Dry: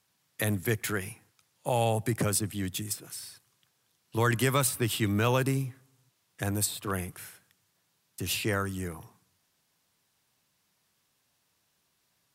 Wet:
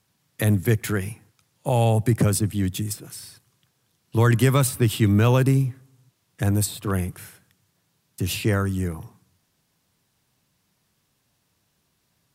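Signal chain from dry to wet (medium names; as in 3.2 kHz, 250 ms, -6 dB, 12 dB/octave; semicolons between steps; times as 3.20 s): bass shelf 350 Hz +10 dB; trim +2 dB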